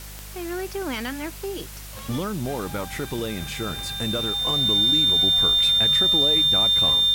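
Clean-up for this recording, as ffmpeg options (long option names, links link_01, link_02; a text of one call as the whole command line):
ffmpeg -i in.wav -af "adeclick=threshold=4,bandreject=frequency=50.8:width_type=h:width=4,bandreject=frequency=101.6:width_type=h:width=4,bandreject=frequency=152.4:width_type=h:width=4,bandreject=frequency=203.2:width_type=h:width=4,bandreject=frequency=3600:width=30,afwtdn=0.0089" out.wav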